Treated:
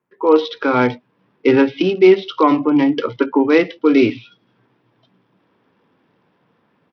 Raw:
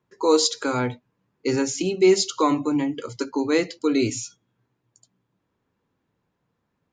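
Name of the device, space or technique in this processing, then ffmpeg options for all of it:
Bluetooth headset: -af "highpass=180,dynaudnorm=f=160:g=3:m=15.5dB,aresample=8000,aresample=44100" -ar 44100 -c:a sbc -b:a 64k

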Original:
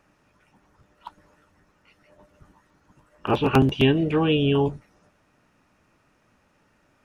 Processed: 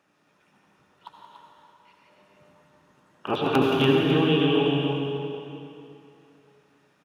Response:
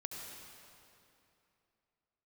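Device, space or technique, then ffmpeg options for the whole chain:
stadium PA: -filter_complex "[0:a]highpass=170,equalizer=f=3.5k:t=o:w=0.41:g=6,aecho=1:1:174.9|288.6:0.282|0.447[a];[1:a]atrim=start_sample=2205[b];[a][b]afir=irnorm=-1:irlink=0"

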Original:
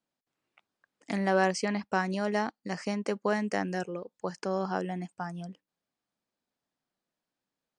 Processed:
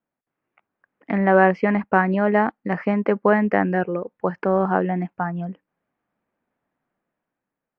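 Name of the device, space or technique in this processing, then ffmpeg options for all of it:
action camera in a waterproof case: -af "lowpass=f=2.2k:w=0.5412,lowpass=f=2.2k:w=1.3066,dynaudnorm=f=390:g=5:m=8dB,volume=3.5dB" -ar 44100 -c:a aac -b:a 96k

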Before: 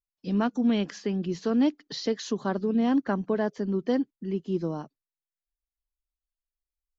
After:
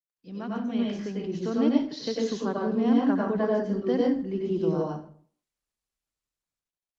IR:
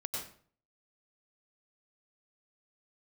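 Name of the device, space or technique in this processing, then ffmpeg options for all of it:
far-field microphone of a smart speaker: -filter_complex "[0:a]asettb=1/sr,asplit=3[a][b][c];[a]atrim=end=0.784[d];[b]atrim=start=0.78:end=1.28,asetpts=PTS-STARTPTS,afade=t=in:d=0.004:c=qsin,afade=t=out:st=0.496:d=0.004:c=qsin,agate=range=-33dB:threshold=-38dB:ratio=3:detection=peak[e];[c]atrim=start=1.276[f];[d][e]acrossfade=d=0.004:c1=hsin:c2=qsin[g];[g][f]acrossfade=d=0.004:c1=qsin:c2=hsin[h];[1:a]atrim=start_sample=2205[i];[h][i]afir=irnorm=-1:irlink=0,highpass=f=96:p=1,dynaudnorm=f=220:g=9:m=13dB,volume=-8.5dB" -ar 48000 -c:a libopus -b:a 24k

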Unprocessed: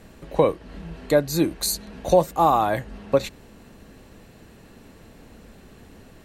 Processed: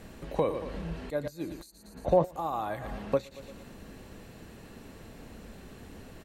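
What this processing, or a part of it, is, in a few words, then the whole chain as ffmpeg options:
de-esser from a sidechain: -filter_complex "[0:a]asplit=3[a][b][c];[a]afade=t=out:st=1.7:d=0.02[d];[b]lowpass=1.9k,afade=t=in:st=1.7:d=0.02,afade=t=out:st=2.24:d=0.02[e];[c]afade=t=in:st=2.24:d=0.02[f];[d][e][f]amix=inputs=3:normalize=0,aecho=1:1:115|230|345|460:0.158|0.0713|0.0321|0.0144,asplit=2[g][h];[h]highpass=6.8k,apad=whole_len=317286[i];[g][i]sidechaincompress=threshold=-59dB:ratio=5:attack=2.7:release=60"

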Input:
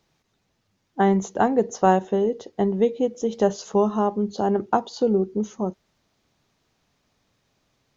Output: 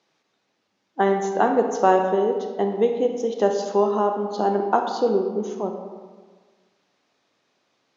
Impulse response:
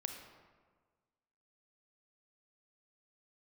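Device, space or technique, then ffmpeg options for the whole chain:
supermarket ceiling speaker: -filter_complex "[0:a]highpass=290,lowpass=6.1k[a];[1:a]atrim=start_sample=2205[b];[a][b]afir=irnorm=-1:irlink=0,volume=3.5dB"

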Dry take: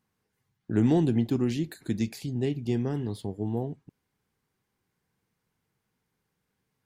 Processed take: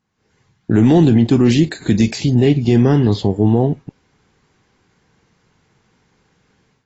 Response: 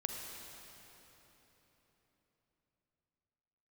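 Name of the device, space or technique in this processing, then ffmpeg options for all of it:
low-bitrate web radio: -filter_complex "[0:a]asettb=1/sr,asplit=3[a][b][c];[a]atrim=end=2.454[d];[b]atrim=start=2.45:end=3.43,asetpts=PTS-STARTPTS,afade=t=in:d=0.004:c=qsin,afade=t=out:st=0.976:d=0.004:c=qsin,lowpass=f=7.5k:w=0.5412,lowpass=f=7.5k:w=1.3066[e];[c]atrim=start=3.426[f];[d][e]acrossfade=d=0.004:c1=hsin:c2=qsin[g];[g][f]acrossfade=d=0.004:c1=qsin:c2=hsin,dynaudnorm=f=160:g=3:m=14.5dB,alimiter=limit=-8dB:level=0:latency=1:release=19,volume=4.5dB" -ar 22050 -c:a aac -b:a 24k

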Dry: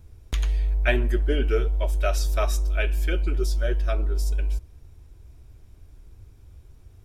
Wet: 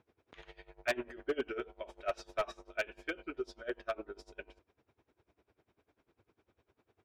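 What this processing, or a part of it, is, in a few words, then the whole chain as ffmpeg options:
helicopter radio: -af "highpass=340,lowpass=2.6k,aeval=exprs='val(0)*pow(10,-22*(0.5-0.5*cos(2*PI*10*n/s))/20)':c=same,asoftclip=type=hard:threshold=-25dB,volume=-1dB"

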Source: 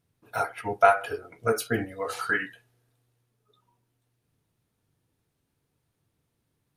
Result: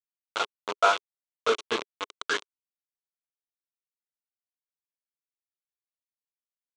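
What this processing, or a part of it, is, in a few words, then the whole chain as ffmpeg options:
hand-held game console: -af "acrusher=bits=3:mix=0:aa=0.000001,highpass=400,equalizer=f=410:t=q:w=4:g=4,equalizer=f=730:t=q:w=4:g=-8,equalizer=f=1.1k:t=q:w=4:g=5,equalizer=f=1.8k:t=q:w=4:g=-8,equalizer=f=3.4k:t=q:w=4:g=4,equalizer=f=5k:t=q:w=4:g=-7,lowpass=f=6k:w=0.5412,lowpass=f=6k:w=1.3066"

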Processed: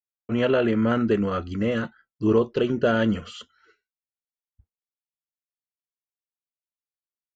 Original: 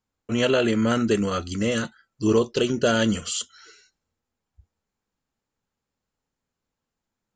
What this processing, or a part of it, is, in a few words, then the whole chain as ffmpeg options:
hearing-loss simulation: -af "lowpass=2.1k,agate=range=-33dB:threshold=-46dB:ratio=3:detection=peak"

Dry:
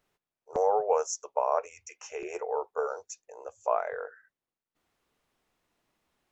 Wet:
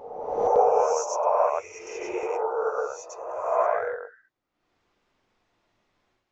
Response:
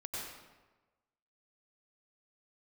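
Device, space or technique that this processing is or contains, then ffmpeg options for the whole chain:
reverse reverb: -filter_complex "[0:a]lowpass=f=6.4k:w=0.5412,lowpass=f=6.4k:w=1.3066,areverse[a];[1:a]atrim=start_sample=2205[b];[a][b]afir=irnorm=-1:irlink=0,areverse,volume=5dB"

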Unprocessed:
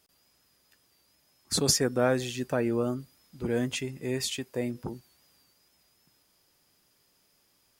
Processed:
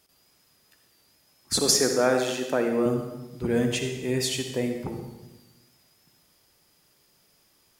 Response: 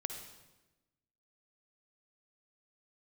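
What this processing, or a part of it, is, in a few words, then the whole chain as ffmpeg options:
bathroom: -filter_complex "[0:a]asettb=1/sr,asplit=3[a][b][c];[a]atrim=end=1.584[d];[b]atrim=start=1.58:end=2.86,asetpts=PTS-STARTPTS,afade=t=in:d=0.004:c=qsin,afade=t=out:st=1.276:d=0.004:c=qsin,highpass=250[e];[c]atrim=start=2.856[f];[d][e]acrossfade=d=0.004:c1=hsin:c2=qsin[g];[g][f]acrossfade=d=0.004:c1=qsin:c2=hsin[h];[1:a]atrim=start_sample=2205[i];[h][i]afir=irnorm=-1:irlink=0,volume=4.5dB"

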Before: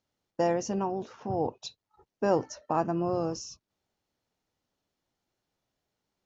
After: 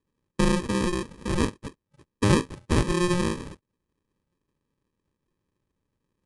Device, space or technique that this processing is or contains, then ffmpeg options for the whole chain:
crushed at another speed: -af "asetrate=88200,aresample=44100,acrusher=samples=31:mix=1:aa=0.000001,asetrate=22050,aresample=44100,volume=5dB"

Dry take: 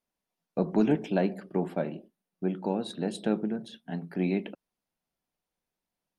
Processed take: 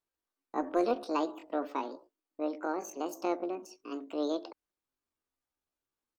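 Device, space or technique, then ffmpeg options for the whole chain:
chipmunk voice: -af "asetrate=72056,aresample=44100,atempo=0.612027,volume=-4.5dB"

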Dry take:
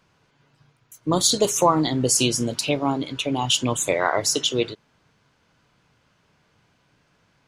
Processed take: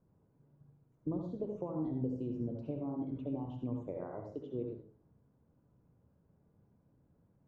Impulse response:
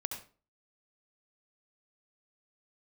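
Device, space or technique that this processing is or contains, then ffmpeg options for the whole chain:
television next door: -filter_complex "[0:a]acompressor=threshold=-29dB:ratio=4,lowpass=420[a];[1:a]atrim=start_sample=2205[b];[a][b]afir=irnorm=-1:irlink=0,volume=-3.5dB"

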